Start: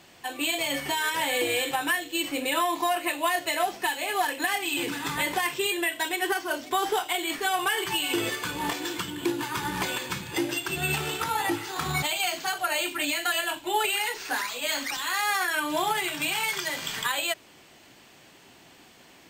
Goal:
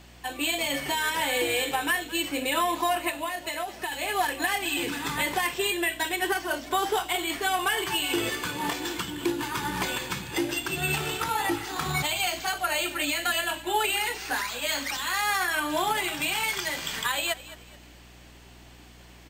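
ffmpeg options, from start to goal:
-filter_complex "[0:a]aeval=exprs='val(0)+0.00282*(sin(2*PI*60*n/s)+sin(2*PI*2*60*n/s)/2+sin(2*PI*3*60*n/s)/3+sin(2*PI*4*60*n/s)/4+sin(2*PI*5*60*n/s)/5)':c=same,asplit=3[s0][s1][s2];[s0]afade=t=out:st=3.09:d=0.02[s3];[s1]acompressor=threshold=0.0355:ratio=6,afade=t=in:st=3.09:d=0.02,afade=t=out:st=3.91:d=0.02[s4];[s2]afade=t=in:st=3.91:d=0.02[s5];[s3][s4][s5]amix=inputs=3:normalize=0,asplit=4[s6][s7][s8][s9];[s7]adelay=214,afreqshift=-41,volume=0.141[s10];[s8]adelay=428,afreqshift=-82,volume=0.0495[s11];[s9]adelay=642,afreqshift=-123,volume=0.0174[s12];[s6][s10][s11][s12]amix=inputs=4:normalize=0"

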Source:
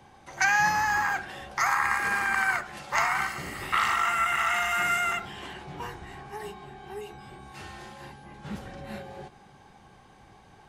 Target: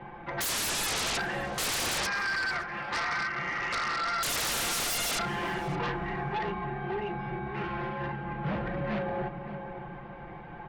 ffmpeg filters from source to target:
-filter_complex "[0:a]lowpass=f=2400:w=0.5412,lowpass=f=2400:w=1.3066,aecho=1:1:5.8:0.87,asettb=1/sr,asplit=3[s0][s1][s2];[s0]atrim=end=2.064[s3];[s1]atrim=start=2.06:end=4.23,asetpts=PTS-STARTPTS,afade=t=in:d=0.004:c=qsin,afade=t=out:st=2.166:d=0.004:c=qsin,acrossover=split=550|1200[s4][s5][s6];[s4]acompressor=threshold=0.00251:ratio=4[s7];[s5]acompressor=threshold=0.00355:ratio=4[s8];[s6]acompressor=threshold=0.0178:ratio=4[s9];[s7][s8][s9]amix=inputs=3:normalize=0[s10];[s2]atrim=start=4.226[s11];[s3][s10]acrossfade=d=0.004:c1=hsin:c2=qsin[s12];[s12][s11]acrossfade=d=0.004:c1=qsin:c2=hsin,aeval=exprs='0.0944*sin(PI/2*3.55*val(0)/0.0944)':c=same,asplit=2[s13][s14];[s14]adelay=567,lowpass=f=1300:p=1,volume=0.355,asplit=2[s15][s16];[s16]adelay=567,lowpass=f=1300:p=1,volume=0.37,asplit=2[s17][s18];[s18]adelay=567,lowpass=f=1300:p=1,volume=0.37,asplit=2[s19][s20];[s20]adelay=567,lowpass=f=1300:p=1,volume=0.37[s21];[s13][s15][s17][s19][s21]amix=inputs=5:normalize=0,volume=0.447"

